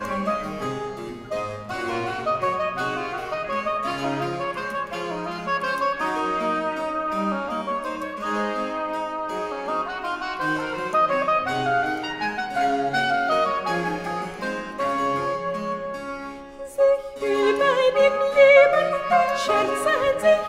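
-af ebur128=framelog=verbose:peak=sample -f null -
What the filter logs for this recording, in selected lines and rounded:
Integrated loudness:
  I:         -23.2 LUFS
  Threshold: -33.3 LUFS
Loudness range:
  LRA:         8.3 LU
  Threshold: -43.7 LUFS
  LRA low:   -26.9 LUFS
  LRA high:  -18.6 LUFS
Sample peak:
  Peak:       -2.5 dBFS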